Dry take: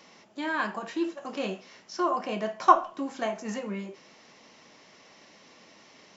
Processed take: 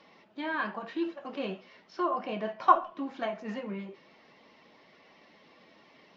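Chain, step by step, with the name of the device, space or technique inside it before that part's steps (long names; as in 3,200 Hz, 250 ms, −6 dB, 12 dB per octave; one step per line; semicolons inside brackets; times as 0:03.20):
clip after many re-uploads (low-pass filter 4,100 Hz 24 dB per octave; spectral magnitudes quantised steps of 15 dB)
level −2.5 dB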